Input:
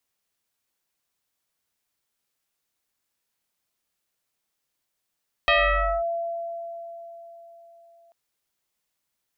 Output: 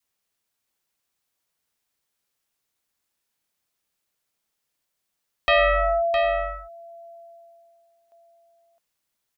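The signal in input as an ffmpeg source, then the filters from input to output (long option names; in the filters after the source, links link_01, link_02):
-f lavfi -i "aevalsrc='0.178*pow(10,-3*t/4.07)*sin(2*PI*677*t+4.3*clip(1-t/0.55,0,1)*sin(2*PI*0.93*677*t))':duration=2.64:sample_rate=44100"
-filter_complex "[0:a]adynamicequalizer=threshold=0.0112:dfrequency=470:dqfactor=0.94:tfrequency=470:tqfactor=0.94:attack=5:release=100:ratio=0.375:range=3:mode=boostabove:tftype=bell,asplit=2[link_01][link_02];[link_02]aecho=0:1:661:0.398[link_03];[link_01][link_03]amix=inputs=2:normalize=0"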